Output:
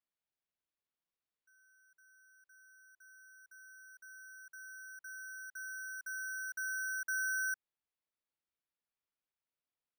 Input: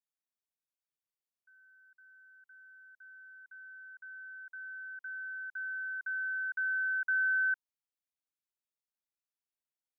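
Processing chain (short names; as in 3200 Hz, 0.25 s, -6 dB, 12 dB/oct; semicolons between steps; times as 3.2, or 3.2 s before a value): careless resampling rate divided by 6×, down none, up hold; gain -6 dB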